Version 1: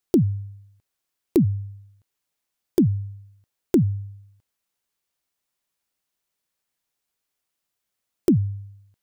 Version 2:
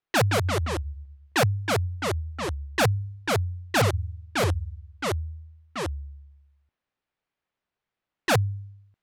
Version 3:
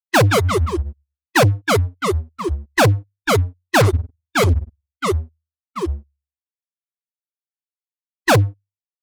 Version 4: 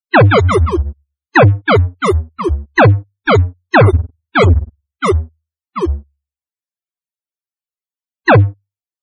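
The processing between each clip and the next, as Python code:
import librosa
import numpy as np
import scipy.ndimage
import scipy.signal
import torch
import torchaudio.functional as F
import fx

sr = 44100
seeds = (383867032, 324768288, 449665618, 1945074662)

y1 = (np.mod(10.0 ** (15.0 / 20.0) * x + 1.0, 2.0) - 1.0) / 10.0 ** (15.0 / 20.0)
y1 = fx.env_lowpass(y1, sr, base_hz=2600.0, full_db=-18.0)
y1 = fx.echo_pitch(y1, sr, ms=155, semitones=-2, count=3, db_per_echo=-3.0)
y1 = y1 * librosa.db_to_amplitude(-1.0)
y2 = fx.bin_expand(y1, sr, power=3.0)
y2 = fx.leveller(y2, sr, passes=3)
y2 = y2 * librosa.db_to_amplitude(7.5)
y3 = fx.spec_topn(y2, sr, count=64)
y3 = y3 * librosa.db_to_amplitude(6.5)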